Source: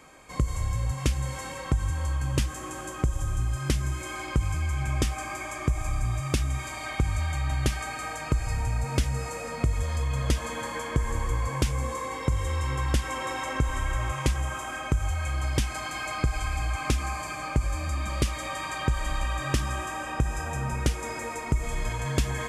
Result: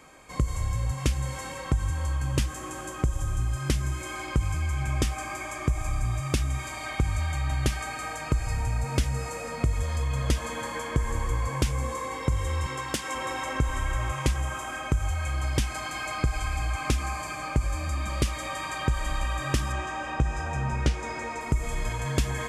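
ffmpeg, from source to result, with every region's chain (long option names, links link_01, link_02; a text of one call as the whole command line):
ffmpeg -i in.wav -filter_complex "[0:a]asettb=1/sr,asplit=3[link_01][link_02][link_03];[link_01]atrim=end=12.664[link_04];[link_02]atrim=start=12.66:end=13.15,asetpts=PTS-STARTPTS,afade=type=in:duration=0.004:curve=qsin,afade=type=out:start_time=0.486:duration=0.004:curve=qsin,highpass=200,aemphasis=mode=production:type=50fm,adynamicsmooth=sensitivity=1.5:basefreq=6500[link_05];[link_03]atrim=start=13.146[link_06];[link_04][link_05]acrossfade=duration=0.004:curve1=hsin:curve2=qsin[link_07];[link_07][link_06]acrossfade=duration=0.004:curve1=qsin:curve2=hsin,asettb=1/sr,asplit=3[link_08][link_09][link_10];[link_08]atrim=end=19.724[link_11];[link_09]atrim=start=19.72:end=21.41,asetpts=PTS-STARTPTS,afade=type=in:duration=0.004:curve=qsin,afade=type=out:start_time=1.686:duration=0.004:curve=qsin,lowpass=6000,asplit=2[link_12][link_13];[link_13]adelay=14,volume=-10.5dB[link_14];[link_12][link_14]amix=inputs=2:normalize=0,atrim=end_sample=74529[link_15];[link_10]atrim=start=21.406[link_16];[link_11][link_15]acrossfade=duration=0.004:curve1=hsin:curve2=qsin[link_17];[link_17][link_16]acrossfade=duration=0.004:curve1=qsin:curve2=hsin" out.wav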